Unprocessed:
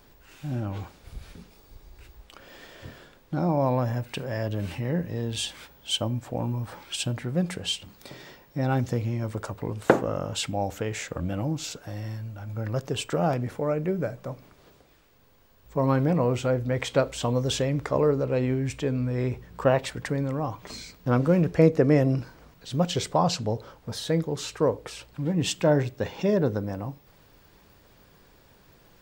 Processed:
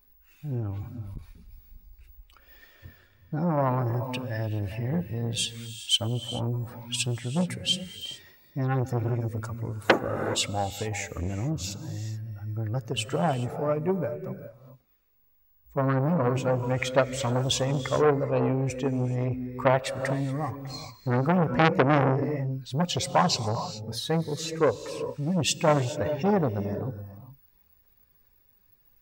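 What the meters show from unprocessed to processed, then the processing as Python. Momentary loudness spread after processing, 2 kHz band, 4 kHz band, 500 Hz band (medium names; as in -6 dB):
12 LU, +3.0 dB, +3.0 dB, -1.5 dB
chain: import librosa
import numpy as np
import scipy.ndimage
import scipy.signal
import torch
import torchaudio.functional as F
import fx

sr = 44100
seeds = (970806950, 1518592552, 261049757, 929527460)

y = fx.bin_expand(x, sr, power=1.5)
y = fx.rev_gated(y, sr, seeds[0], gate_ms=450, shape='rising', drr_db=10.5)
y = fx.transformer_sat(y, sr, knee_hz=2000.0)
y = F.gain(torch.from_numpy(y), 5.5).numpy()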